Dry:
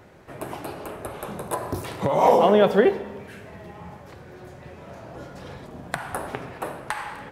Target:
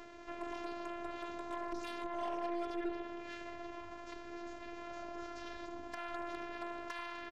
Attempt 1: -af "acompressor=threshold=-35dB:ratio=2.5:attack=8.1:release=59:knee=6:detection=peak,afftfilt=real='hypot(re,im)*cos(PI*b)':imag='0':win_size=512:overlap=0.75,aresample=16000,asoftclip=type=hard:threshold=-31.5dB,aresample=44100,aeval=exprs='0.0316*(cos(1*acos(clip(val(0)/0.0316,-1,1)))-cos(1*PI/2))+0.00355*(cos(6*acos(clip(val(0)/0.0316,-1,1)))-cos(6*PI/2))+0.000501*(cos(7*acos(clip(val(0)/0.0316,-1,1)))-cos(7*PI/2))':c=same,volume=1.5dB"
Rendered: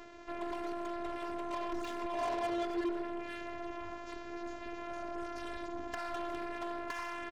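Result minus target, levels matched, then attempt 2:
compressor: peak gain reduction -6.5 dB
-af "acompressor=threshold=-46dB:ratio=2.5:attack=8.1:release=59:knee=6:detection=peak,afftfilt=real='hypot(re,im)*cos(PI*b)':imag='0':win_size=512:overlap=0.75,aresample=16000,asoftclip=type=hard:threshold=-31.5dB,aresample=44100,aeval=exprs='0.0316*(cos(1*acos(clip(val(0)/0.0316,-1,1)))-cos(1*PI/2))+0.00355*(cos(6*acos(clip(val(0)/0.0316,-1,1)))-cos(6*PI/2))+0.000501*(cos(7*acos(clip(val(0)/0.0316,-1,1)))-cos(7*PI/2))':c=same,volume=1.5dB"

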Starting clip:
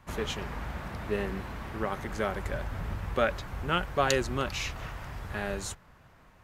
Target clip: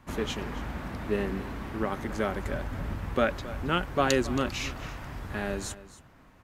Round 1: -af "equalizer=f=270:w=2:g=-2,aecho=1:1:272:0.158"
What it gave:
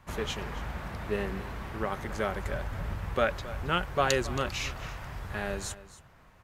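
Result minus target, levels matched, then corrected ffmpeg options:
250 Hz band -4.5 dB
-af "equalizer=f=270:w=2:g=8,aecho=1:1:272:0.158"

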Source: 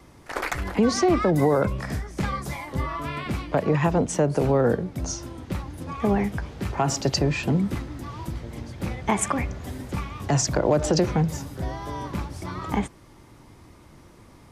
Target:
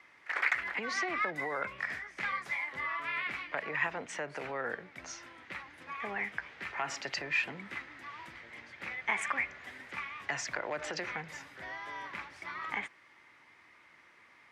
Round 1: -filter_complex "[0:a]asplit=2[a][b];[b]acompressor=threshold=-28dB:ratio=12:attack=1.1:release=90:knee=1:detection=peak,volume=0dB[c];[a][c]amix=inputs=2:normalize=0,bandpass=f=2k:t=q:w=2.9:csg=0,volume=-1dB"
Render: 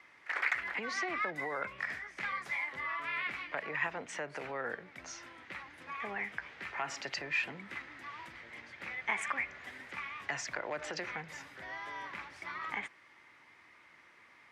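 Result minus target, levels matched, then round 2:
compressor: peak gain reduction +7 dB
-filter_complex "[0:a]asplit=2[a][b];[b]acompressor=threshold=-20.5dB:ratio=12:attack=1.1:release=90:knee=1:detection=peak,volume=0dB[c];[a][c]amix=inputs=2:normalize=0,bandpass=f=2k:t=q:w=2.9:csg=0,volume=-1dB"

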